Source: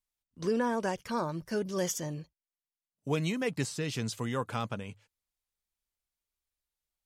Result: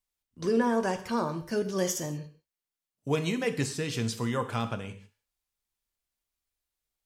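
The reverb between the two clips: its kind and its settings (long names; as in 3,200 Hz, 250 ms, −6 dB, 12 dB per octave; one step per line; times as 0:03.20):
reverb whose tail is shaped and stops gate 210 ms falling, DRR 8 dB
level +2 dB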